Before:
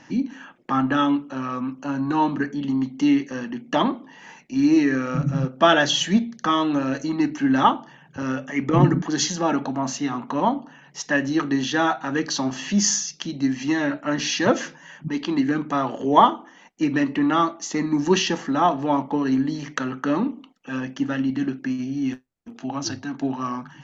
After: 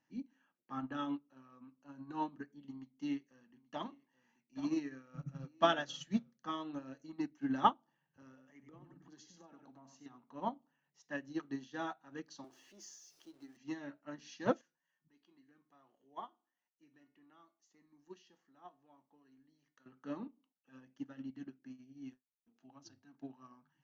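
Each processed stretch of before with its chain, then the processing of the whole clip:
2.71–6.44 s: peaking EQ 360 Hz -3 dB 1.6 oct + delay 829 ms -13 dB
7.78–10.06 s: delay 96 ms -8.5 dB + compression 16:1, threshold -23 dBFS
12.44–13.57 s: jump at every zero crossing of -31.5 dBFS + resonant low shelf 270 Hz -8 dB, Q 3 + compression 3:1, threshold -23 dBFS
14.61–19.86 s: bass shelf 470 Hz -4 dB + feedback comb 360 Hz, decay 0.32 s, mix 70%
whole clip: dynamic bell 2.1 kHz, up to -3 dB, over -39 dBFS, Q 1.4; upward expansion 2.5:1, over -29 dBFS; trim -9 dB

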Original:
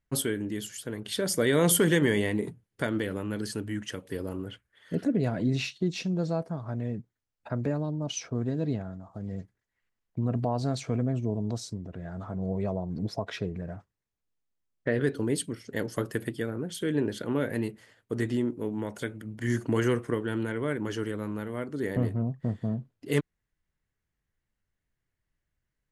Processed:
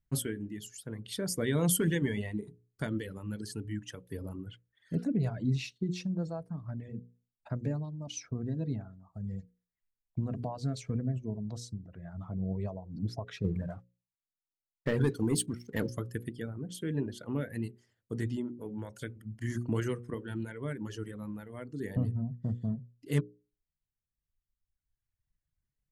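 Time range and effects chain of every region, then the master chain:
13.44–15.90 s: bass shelf 74 Hz -8 dB + waveshaping leveller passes 2
whole clip: reverb removal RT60 1.9 s; tone controls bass +11 dB, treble +3 dB; hum notches 60/120/180/240/300/360/420/480/540 Hz; trim -8 dB

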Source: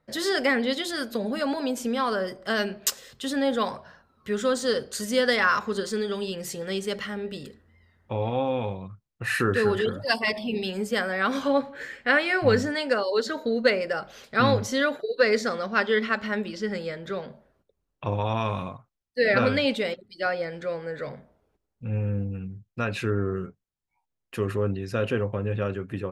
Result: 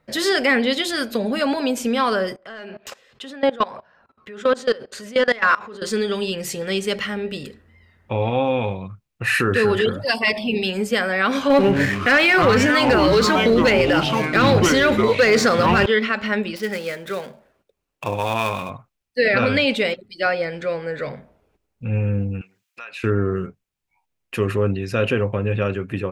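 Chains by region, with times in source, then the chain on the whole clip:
2.36–5.82 s: overdrive pedal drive 13 dB, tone 1.2 kHz, clips at -7 dBFS + level held to a coarse grid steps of 21 dB
11.50–15.86 s: waveshaping leveller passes 2 + ever faster or slower copies 85 ms, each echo -6 st, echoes 3, each echo -6 dB
16.56–18.70 s: dead-time distortion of 0.057 ms + bass shelf 200 Hz -10 dB
22.41–23.04 s: high-pass 960 Hz + compression 2.5:1, threshold -46 dBFS + tape noise reduction on one side only encoder only
whole clip: peaking EQ 2.5 kHz +6 dB 0.5 oct; loudness maximiser +13 dB; trim -7 dB

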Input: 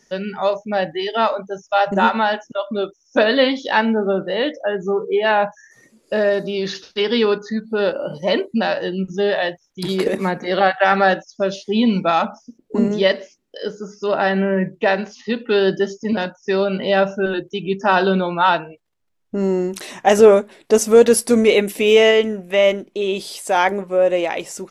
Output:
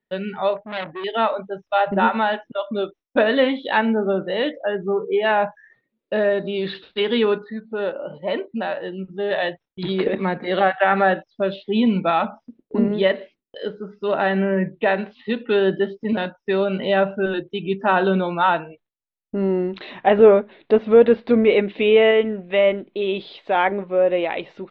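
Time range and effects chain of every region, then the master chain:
0.56–1.04 s: low-pass 1.2 kHz 6 dB/octave + transformer saturation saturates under 3.2 kHz
7.44–9.31 s: low-pass 1.5 kHz 6 dB/octave + bass shelf 400 Hz -8 dB
whole clip: gate with hold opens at -38 dBFS; Chebyshev low-pass 3.9 kHz, order 5; low-pass that closes with the level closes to 2.5 kHz, closed at -11 dBFS; trim -1.5 dB

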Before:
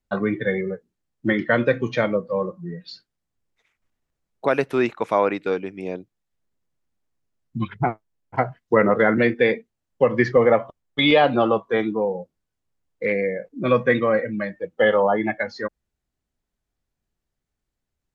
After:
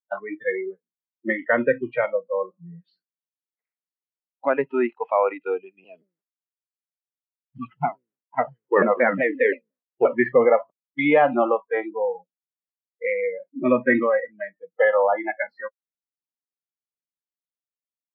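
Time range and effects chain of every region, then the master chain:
5.84–10.13 s: hum notches 60/120/180/240/300/360/420/480/540 Hz + companded quantiser 6-bit + vibrato with a chosen wave saw down 5.7 Hz, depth 250 cents
13.38–14.03 s: bass shelf 150 Hz +9.5 dB + comb 3.2 ms, depth 61%
whole clip: elliptic band-pass 170–2100 Hz, stop band 50 dB; spectral noise reduction 26 dB

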